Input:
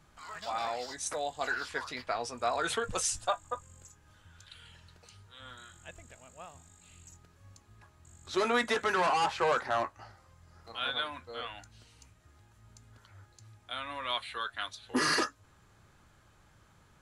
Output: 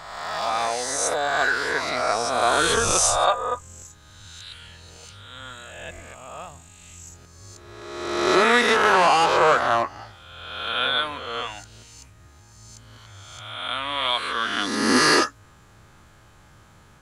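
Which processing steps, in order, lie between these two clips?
reverse spectral sustain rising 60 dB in 1.37 s; trim +7.5 dB

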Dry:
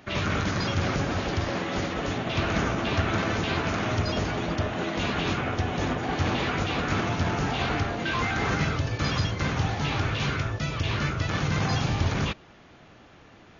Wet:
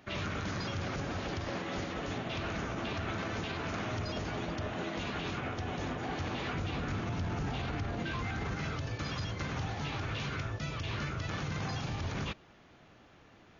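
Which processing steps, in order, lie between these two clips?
6.53–8.56 s: bass shelf 230 Hz +9 dB; peak limiter -20.5 dBFS, peak gain reduction 10.5 dB; trim -7 dB

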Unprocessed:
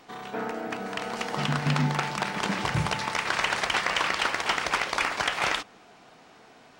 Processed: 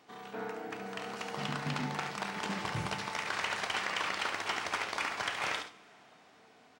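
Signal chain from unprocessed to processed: high-pass 85 Hz; on a send: delay 71 ms -7.5 dB; on the sum: two-slope reverb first 0.38 s, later 3.4 s, from -21 dB, DRR 10 dB; trim -9 dB

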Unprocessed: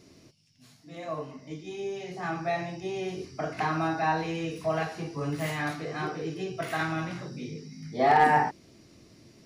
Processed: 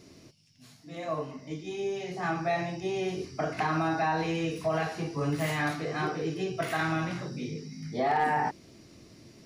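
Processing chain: peak limiter -21.5 dBFS, peak gain reduction 9 dB; trim +2 dB

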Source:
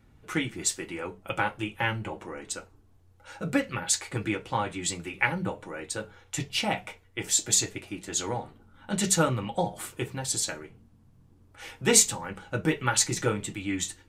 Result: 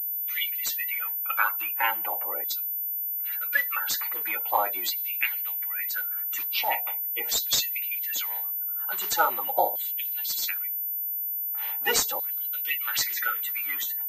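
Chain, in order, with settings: coarse spectral quantiser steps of 30 dB; LFO high-pass saw down 0.41 Hz 560–4100 Hz; class-D stage that switches slowly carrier 14 kHz

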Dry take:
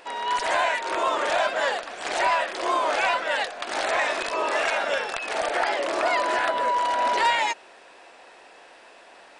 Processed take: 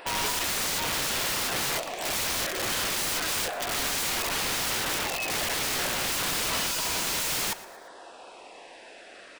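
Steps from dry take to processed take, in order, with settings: in parallel at -5 dB: overload inside the chain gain 27.5 dB; on the sum: LFO notch saw down 0.3 Hz 490–6700 Hz; integer overflow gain 24 dB; feedback delay 117 ms, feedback 42%, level -18 dB

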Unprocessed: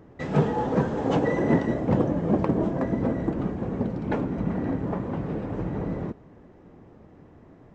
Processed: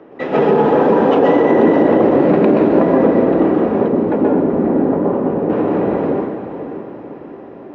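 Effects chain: 2.01–2.65 s: median filter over 41 samples; three-band isolator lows -23 dB, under 260 Hz, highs -15 dB, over 5.3 kHz; reverberation RT60 1.1 s, pre-delay 122 ms, DRR -2 dB; peak limiter -8 dBFS, peak gain reduction 7.5 dB; 3.88–5.50 s: peaking EQ 3.2 kHz -11.5 dB 2.8 oct; echo that smears into a reverb 567 ms, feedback 43%, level -10.5 dB; trim +4.5 dB

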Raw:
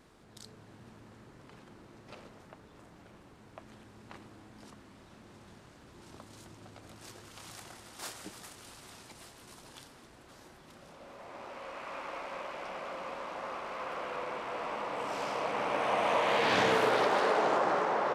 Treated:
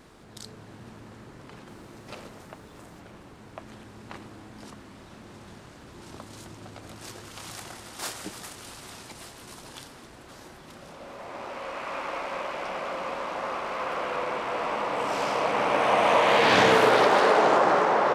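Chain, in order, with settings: 1.68–3.00 s: treble shelf 7.4 kHz +8 dB; trim +8 dB

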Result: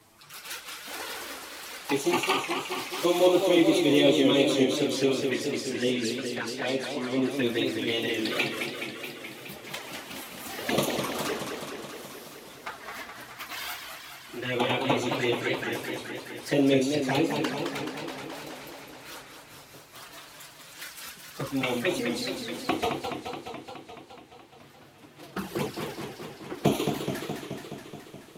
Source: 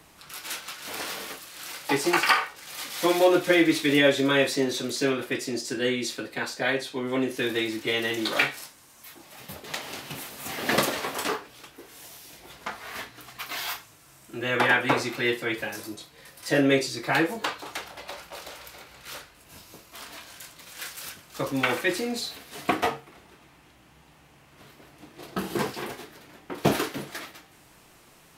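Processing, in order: coarse spectral quantiser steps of 15 dB; touch-sensitive flanger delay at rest 10.2 ms, full sweep at -23.5 dBFS; modulated delay 212 ms, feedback 72%, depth 174 cents, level -6 dB

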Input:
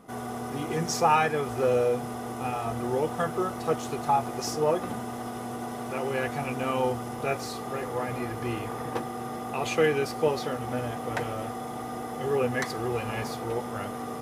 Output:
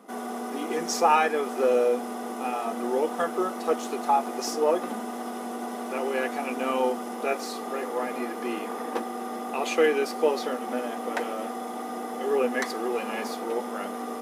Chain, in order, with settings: elliptic high-pass 210 Hz, stop band 40 dB; trim +2 dB

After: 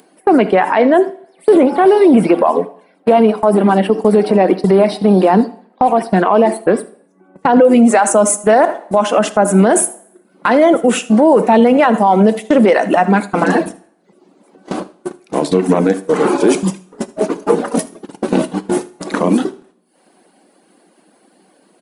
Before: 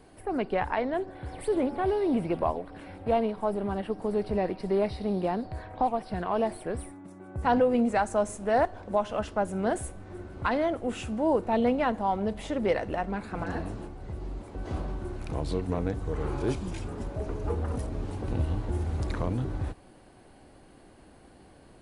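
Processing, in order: upward compressor, threshold -36 dBFS; elliptic high-pass 180 Hz, stop band 40 dB; gate -36 dBFS, range -26 dB; dynamic bell 4.4 kHz, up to -5 dB, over -54 dBFS, Q 1.6; reverb removal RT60 0.68 s; treble shelf 6.4 kHz +4.5 dB, from 6.15 s -4 dB, from 7.65 s +9 dB; delay 78 ms -21 dB; two-slope reverb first 0.55 s, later 1.5 s, from -28 dB, DRR 15 dB; loudness maximiser +24 dB; trim -1 dB

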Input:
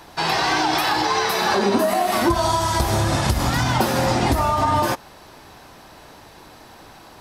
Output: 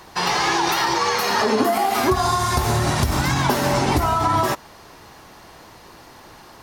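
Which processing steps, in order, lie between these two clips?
speed mistake 44.1 kHz file played as 48 kHz

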